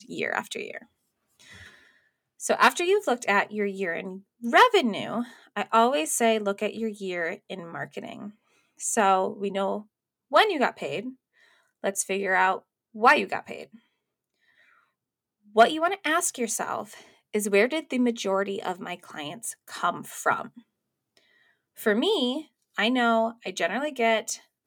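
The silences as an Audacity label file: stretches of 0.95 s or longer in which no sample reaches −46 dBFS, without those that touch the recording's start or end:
13.760000	15.550000	silence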